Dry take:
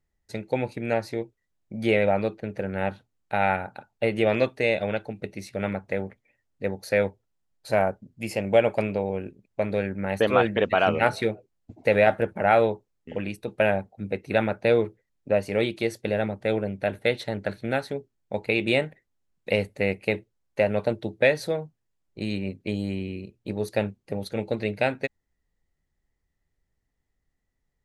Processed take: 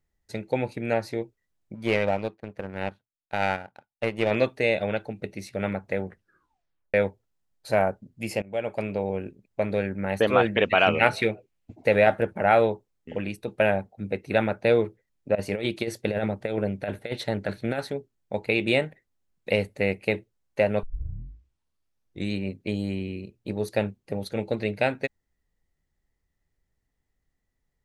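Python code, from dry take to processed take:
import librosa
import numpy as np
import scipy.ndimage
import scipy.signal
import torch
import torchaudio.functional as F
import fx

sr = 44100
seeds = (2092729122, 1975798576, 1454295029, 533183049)

y = fx.power_curve(x, sr, exponent=1.4, at=(1.74, 4.31))
y = fx.peak_eq(y, sr, hz=2500.0, db=8.0, octaves=0.77, at=(10.55, 11.76))
y = fx.over_compress(y, sr, threshold_db=-26.0, ratio=-0.5, at=(15.35, 17.9))
y = fx.edit(y, sr, fx.tape_stop(start_s=6.04, length_s=0.9),
    fx.fade_in_from(start_s=8.42, length_s=0.67, floor_db=-21.0),
    fx.tape_start(start_s=20.83, length_s=1.5), tone=tone)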